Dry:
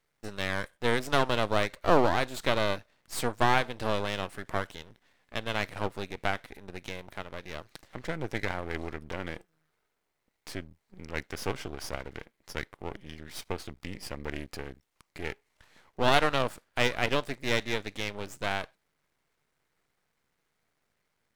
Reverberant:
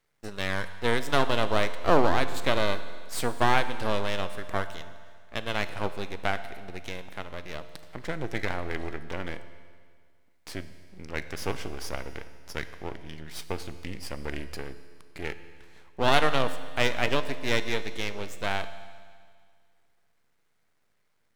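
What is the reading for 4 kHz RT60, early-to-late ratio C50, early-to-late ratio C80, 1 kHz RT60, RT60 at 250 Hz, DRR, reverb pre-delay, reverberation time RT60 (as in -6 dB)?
1.9 s, 12.0 dB, 13.0 dB, 1.9 s, 1.9 s, 11.0 dB, 11 ms, 1.9 s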